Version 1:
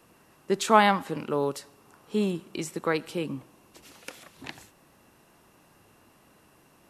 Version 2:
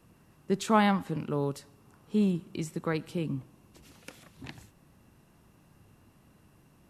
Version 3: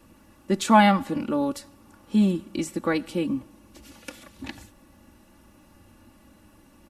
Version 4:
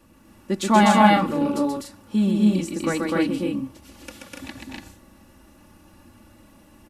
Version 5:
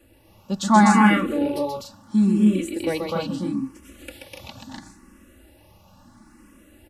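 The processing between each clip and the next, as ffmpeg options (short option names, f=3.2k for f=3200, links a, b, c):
-af "bass=f=250:g=13,treble=f=4k:g=0,volume=-6.5dB"
-af "aecho=1:1:3.5:0.81,volume=5dB"
-af "aecho=1:1:131.2|250.7|288.6:0.631|0.891|0.708,volume=-1dB"
-filter_complex "[0:a]asplit=2[a][b];[b]afreqshift=0.74[c];[a][c]amix=inputs=2:normalize=1,volume=2.5dB"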